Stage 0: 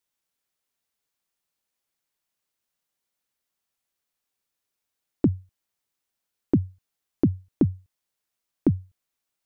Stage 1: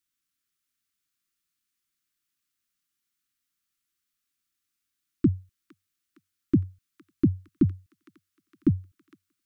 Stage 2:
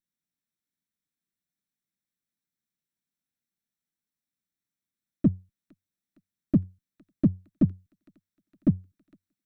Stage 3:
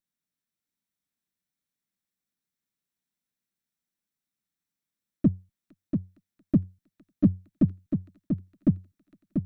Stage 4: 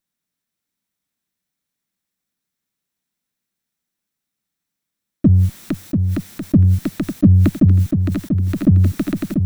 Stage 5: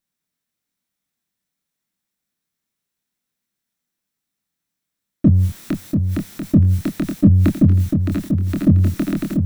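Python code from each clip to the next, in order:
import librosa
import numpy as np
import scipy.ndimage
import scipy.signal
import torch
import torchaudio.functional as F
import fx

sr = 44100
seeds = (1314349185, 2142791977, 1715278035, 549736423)

y1 = scipy.signal.sosfilt(scipy.signal.cheby1(3, 1.0, [340.0, 1200.0], 'bandstop', fs=sr, output='sos'), x)
y1 = fx.echo_wet_highpass(y1, sr, ms=461, feedback_pct=58, hz=1400.0, wet_db=-7.5)
y2 = fx.lower_of_two(y1, sr, delay_ms=0.53)
y2 = fx.peak_eq(y2, sr, hz=190.0, db=13.5, octaves=1.3)
y2 = y2 * 10.0 ** (-9.0 / 20.0)
y3 = y2 + 10.0 ** (-6.0 / 20.0) * np.pad(y2, (int(689 * sr / 1000.0), 0))[:len(y2)]
y4 = fx.sustainer(y3, sr, db_per_s=21.0)
y4 = y4 * 10.0 ** (7.5 / 20.0)
y5 = fx.doubler(y4, sr, ms=25.0, db=-5)
y5 = y5 * 10.0 ** (-1.0 / 20.0)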